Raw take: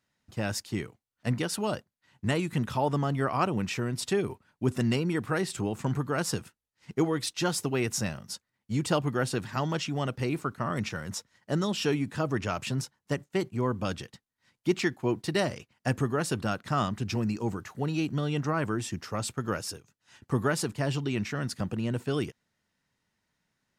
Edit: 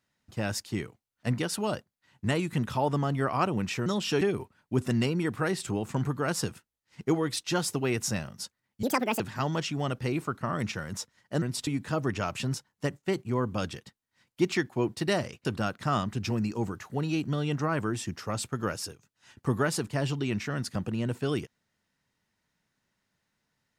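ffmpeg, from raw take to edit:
-filter_complex "[0:a]asplit=8[a][b][c][d][e][f][g][h];[a]atrim=end=3.862[i];[b]atrim=start=11.588:end=11.942[j];[c]atrim=start=4.108:end=8.734[k];[d]atrim=start=8.73:end=9.37,asetpts=PTS-STARTPTS,asetrate=76293,aresample=44100,atrim=end_sample=16314,asetpts=PTS-STARTPTS[l];[e]atrim=start=9.366:end=11.592[m];[f]atrim=start=3.858:end=4.112[n];[g]atrim=start=11.938:end=15.722[o];[h]atrim=start=16.298[p];[i][j]acrossfade=d=0.004:c1=hsin:c2=hsin[q];[q][k]acrossfade=d=0.004:c1=hsin:c2=hsin[r];[r][l]acrossfade=d=0.004:c1=hsin:c2=hsin[s];[s][m]acrossfade=d=0.004:c1=hsin:c2=hsin[t];[t][n]acrossfade=d=0.004:c1=hsin:c2=hsin[u];[u][o]acrossfade=d=0.004:c1=hsin:c2=hsin[v];[v][p]acrossfade=d=0.004:c1=hsin:c2=hsin"

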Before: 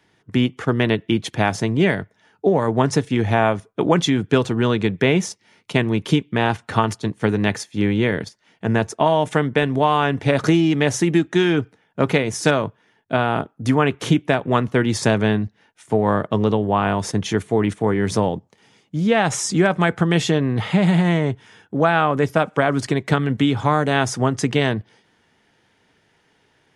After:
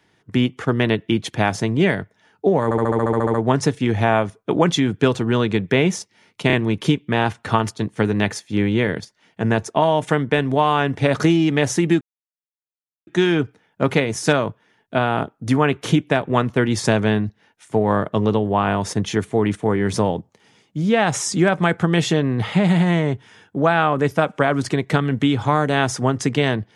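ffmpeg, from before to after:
-filter_complex "[0:a]asplit=14[a][b][c][d][e][f][g][h][i][j][k][l][m][n];[a]atrim=end=2.712[o];[b]atrim=start=2.638:end=2.712[p];[c]atrim=start=2.638:end=2.712[q];[d]atrim=start=2.638:end=2.712[r];[e]atrim=start=2.638:end=2.712[s];[f]atrim=start=2.638:end=2.712[t];[g]atrim=start=2.638:end=2.712[u];[h]atrim=start=2.638:end=2.712[v];[i]atrim=start=2.638:end=2.712[w];[j]atrim=start=2.638:end=2.712[x];[k]atrim=start=2.638:end=5.802[y];[l]atrim=start=5.768:end=5.802[z];[m]atrim=start=5.768:end=11.25,asetpts=PTS-STARTPTS,afade=t=out:st=5.478:d=0.004:c=hsin,apad=pad_dur=1.06[aa];[n]atrim=start=11.25,asetpts=PTS-STARTPTS,afade=t=in:d=0.004:c=hsin[ab];[o][p]acrossfade=d=0.004:c1=hsin:c2=hsin[ac];[ac][q]acrossfade=d=0.004:c1=hsin:c2=hsin[ad];[ad][r]acrossfade=d=0.004:c1=hsin:c2=hsin[ae];[ae][s]acrossfade=d=0.004:c1=hsin:c2=hsin[af];[af][t]acrossfade=d=0.004:c1=hsin:c2=hsin[ag];[ag][u]acrossfade=d=0.004:c1=hsin:c2=hsin[ah];[ah][v]acrossfade=d=0.004:c1=hsin:c2=hsin[ai];[ai][w]acrossfade=d=0.004:c1=hsin:c2=hsin[aj];[aj][x]acrossfade=d=0.004:c1=hsin:c2=hsin[ak];[ak][y]acrossfade=d=0.004:c1=hsin:c2=hsin[al];[al][z]acrossfade=d=0.004:c1=hsin:c2=hsin[am];[aa][ab]concat=n=2:v=0:a=1[an];[am][an]acrossfade=d=0.004:c1=hsin:c2=hsin"

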